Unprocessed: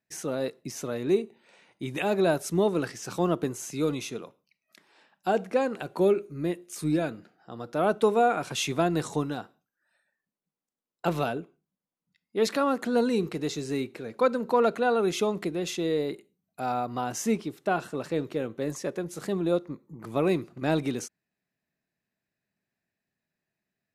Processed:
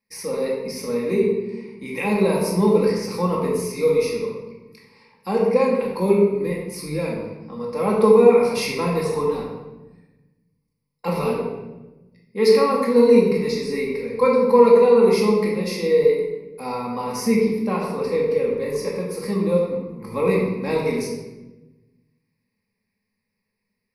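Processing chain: ripple EQ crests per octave 0.88, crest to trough 18 dB; shoebox room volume 560 m³, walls mixed, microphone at 2.2 m; gain -2 dB

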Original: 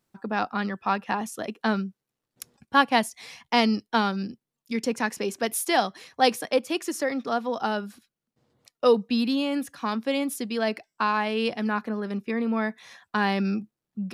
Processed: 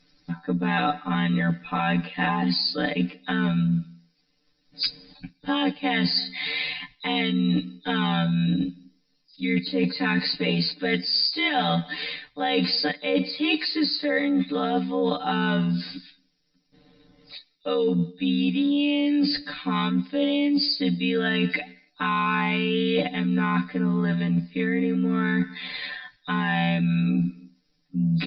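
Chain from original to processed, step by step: nonlinear frequency compression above 3600 Hz 4:1; limiter -15.5 dBFS, peak gain reduction 10 dB; resonant high shelf 1500 Hz +8 dB, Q 1.5; comb 3.9 ms, depth 88%; on a send at -22 dB: reverb, pre-delay 3 ms; on the sum: granular stretch 2×, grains 27 ms; tilt -2.5 dB/oct; reverse; compressor 12:1, threshold -28 dBFS, peak gain reduction 16.5 dB; reverse; gain +8 dB

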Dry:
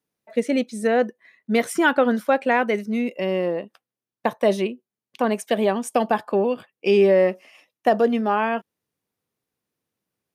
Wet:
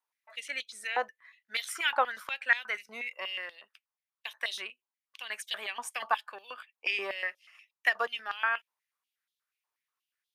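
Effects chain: 7.05–8.07 transient shaper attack +5 dB, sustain -4 dB; stepped high-pass 8.3 Hz 950–3500 Hz; gain -7 dB

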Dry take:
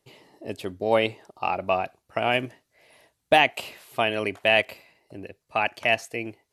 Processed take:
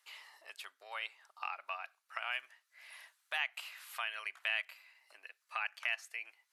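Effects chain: compressor 2:1, threshold -49 dBFS, peak gain reduction 19 dB; ladder high-pass 1100 Hz, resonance 40%; gain +10.5 dB

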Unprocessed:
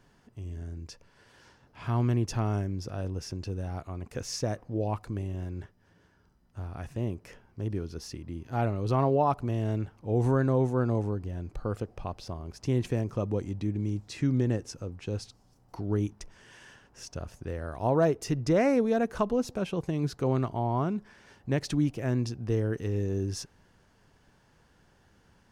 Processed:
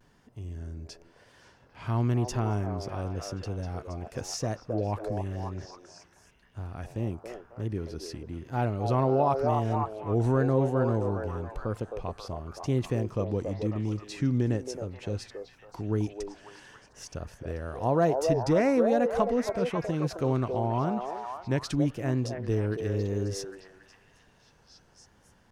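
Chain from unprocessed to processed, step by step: delay with a stepping band-pass 0.27 s, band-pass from 570 Hz, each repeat 0.7 oct, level -1.5 dB; vibrato 0.96 Hz 56 cents

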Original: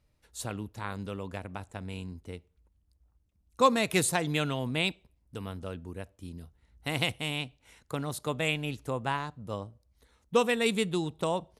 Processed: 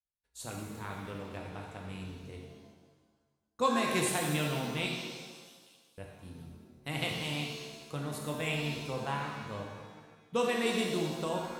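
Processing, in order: expander -52 dBFS; 4.86–5.98 inverse Chebyshev high-pass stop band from 1300 Hz, stop band 50 dB; shimmer reverb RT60 1.4 s, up +7 st, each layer -8 dB, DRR -0.5 dB; gain -7 dB

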